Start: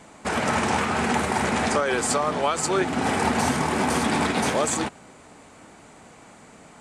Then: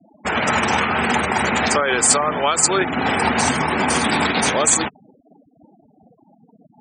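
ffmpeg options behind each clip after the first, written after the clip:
ffmpeg -i in.wav -af "highshelf=frequency=3700:gain=-9,afftfilt=real='re*gte(hypot(re,im),0.0158)':imag='im*gte(hypot(re,im),0.0158)':win_size=1024:overlap=0.75,crystalizer=i=7:c=0,volume=2dB" out.wav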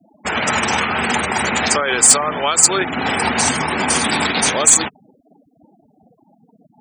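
ffmpeg -i in.wav -af "highshelf=frequency=3300:gain=8,asoftclip=type=hard:threshold=-1dB,volume=-1dB" out.wav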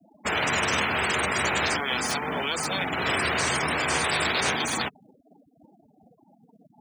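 ffmpeg -i in.wav -filter_complex "[0:a]afftfilt=real='re*lt(hypot(re,im),0.398)':imag='im*lt(hypot(re,im),0.398)':win_size=1024:overlap=0.75,acrossover=split=230|1400|3400[link_01][link_02][link_03][link_04];[link_04]alimiter=limit=-19dB:level=0:latency=1[link_05];[link_01][link_02][link_03][link_05]amix=inputs=4:normalize=0,acrusher=bits=9:mode=log:mix=0:aa=0.000001,volume=-4.5dB" out.wav

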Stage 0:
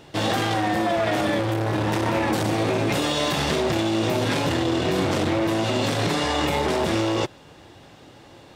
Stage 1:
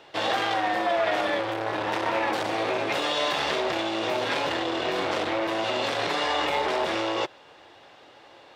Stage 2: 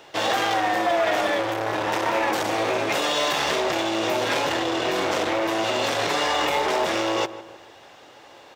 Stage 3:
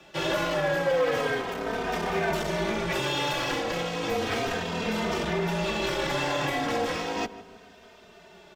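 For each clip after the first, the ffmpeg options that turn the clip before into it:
ffmpeg -i in.wav -filter_complex "[0:a]acrossover=split=410 4900:gain=0.126 1 0.224[link_01][link_02][link_03];[link_01][link_02][link_03]amix=inputs=3:normalize=0" out.wav
ffmpeg -i in.wav -filter_complex "[0:a]asplit=2[link_01][link_02];[link_02]volume=22dB,asoftclip=hard,volume=-22dB,volume=-7dB[link_03];[link_01][link_03]amix=inputs=2:normalize=0,aexciter=amount=2:drive=6.2:freq=5700,asplit=2[link_04][link_05];[link_05]adelay=154,lowpass=frequency=1600:poles=1,volume=-14dB,asplit=2[link_06][link_07];[link_07]adelay=154,lowpass=frequency=1600:poles=1,volume=0.45,asplit=2[link_08][link_09];[link_09]adelay=154,lowpass=frequency=1600:poles=1,volume=0.45,asplit=2[link_10][link_11];[link_11]adelay=154,lowpass=frequency=1600:poles=1,volume=0.45[link_12];[link_04][link_06][link_08][link_10][link_12]amix=inputs=5:normalize=0" out.wav
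ffmpeg -i in.wav -filter_complex "[0:a]afreqshift=-160,acrossover=split=140|3700[link_01][link_02][link_03];[link_03]asoftclip=type=tanh:threshold=-31dB[link_04];[link_01][link_02][link_04]amix=inputs=3:normalize=0,asplit=2[link_05][link_06];[link_06]adelay=3,afreqshift=-0.34[link_07];[link_05][link_07]amix=inputs=2:normalize=1,volume=-1.5dB" out.wav

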